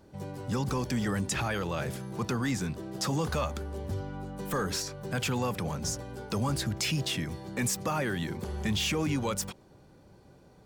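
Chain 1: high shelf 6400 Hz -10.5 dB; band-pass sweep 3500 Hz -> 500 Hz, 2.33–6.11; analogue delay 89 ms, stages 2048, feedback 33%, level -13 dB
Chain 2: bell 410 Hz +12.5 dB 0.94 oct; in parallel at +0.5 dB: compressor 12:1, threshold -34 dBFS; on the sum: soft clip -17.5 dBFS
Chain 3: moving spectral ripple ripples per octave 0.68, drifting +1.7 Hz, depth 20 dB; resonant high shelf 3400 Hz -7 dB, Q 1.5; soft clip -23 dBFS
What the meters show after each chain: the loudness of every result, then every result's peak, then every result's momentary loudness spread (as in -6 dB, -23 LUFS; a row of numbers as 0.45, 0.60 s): -43.0, -27.0, -31.0 LUFS; -24.5, -18.0, -23.0 dBFS; 15, 6, 7 LU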